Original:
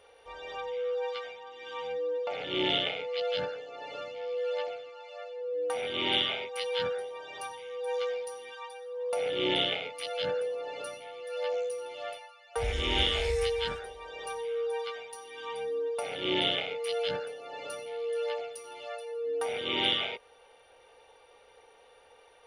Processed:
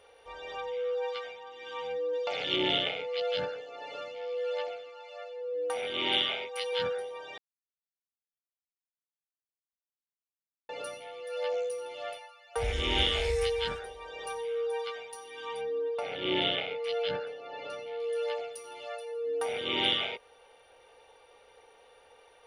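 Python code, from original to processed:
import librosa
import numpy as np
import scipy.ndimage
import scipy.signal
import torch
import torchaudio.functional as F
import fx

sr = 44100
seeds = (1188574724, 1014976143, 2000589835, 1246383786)

y = fx.peak_eq(x, sr, hz=5200.0, db=10.0, octaves=2.1, at=(2.13, 2.56))
y = fx.low_shelf(y, sr, hz=180.0, db=-7.5, at=(3.61, 6.73))
y = fx.lowpass(y, sr, hz=4300.0, slope=12, at=(15.61, 18.0))
y = fx.edit(y, sr, fx.silence(start_s=7.38, length_s=3.31), tone=tone)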